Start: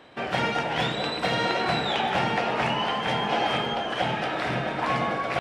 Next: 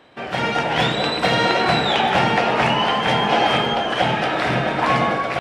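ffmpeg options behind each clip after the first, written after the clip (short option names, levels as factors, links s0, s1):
-af "dynaudnorm=f=180:g=5:m=2.51"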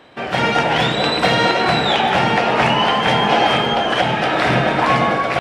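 -af "alimiter=limit=0.376:level=0:latency=1:release=420,volume=1.68"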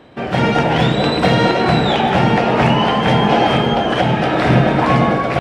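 -af "lowshelf=f=500:g=11.5,volume=0.708"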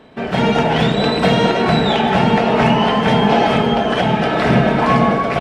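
-af "aecho=1:1:4.6:0.43,volume=0.891"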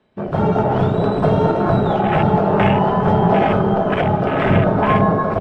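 -af "aecho=1:1:377:0.237,afreqshift=-32,afwtdn=0.112,volume=0.891"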